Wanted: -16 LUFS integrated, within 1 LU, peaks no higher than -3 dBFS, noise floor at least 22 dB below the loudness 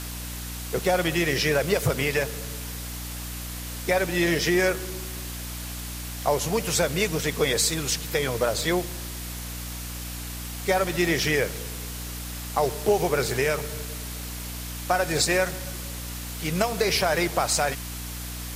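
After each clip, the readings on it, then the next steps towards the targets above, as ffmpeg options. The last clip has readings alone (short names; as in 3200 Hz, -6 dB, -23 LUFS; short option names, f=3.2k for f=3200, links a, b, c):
hum 60 Hz; harmonics up to 300 Hz; hum level -34 dBFS; noise floor -35 dBFS; noise floor target -48 dBFS; loudness -26.0 LUFS; peak -6.5 dBFS; loudness target -16.0 LUFS
-> -af "bandreject=f=60:t=h:w=6,bandreject=f=120:t=h:w=6,bandreject=f=180:t=h:w=6,bandreject=f=240:t=h:w=6,bandreject=f=300:t=h:w=6"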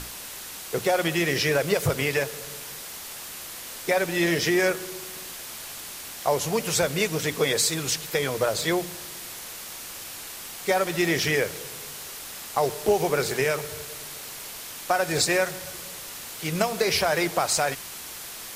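hum none; noise floor -39 dBFS; noise floor target -49 dBFS
-> -af "afftdn=nr=10:nf=-39"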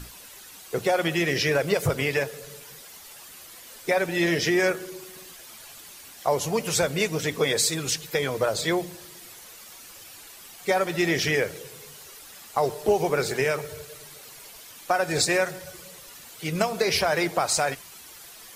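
noise floor -46 dBFS; noise floor target -47 dBFS
-> -af "afftdn=nr=6:nf=-46"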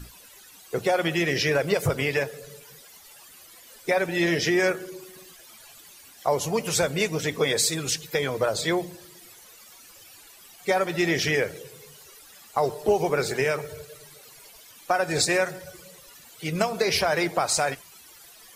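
noise floor -50 dBFS; loudness -25.0 LUFS; peak -7.0 dBFS; loudness target -16.0 LUFS
-> -af "volume=9dB,alimiter=limit=-3dB:level=0:latency=1"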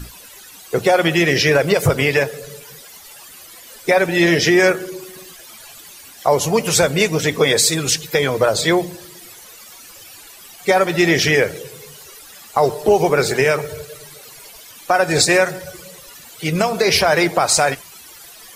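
loudness -16.0 LUFS; peak -3.0 dBFS; noise floor -41 dBFS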